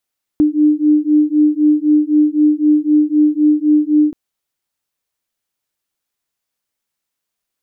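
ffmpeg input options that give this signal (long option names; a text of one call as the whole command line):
ffmpeg -f lavfi -i "aevalsrc='0.237*(sin(2*PI*299*t)+sin(2*PI*302.9*t))':duration=3.73:sample_rate=44100" out.wav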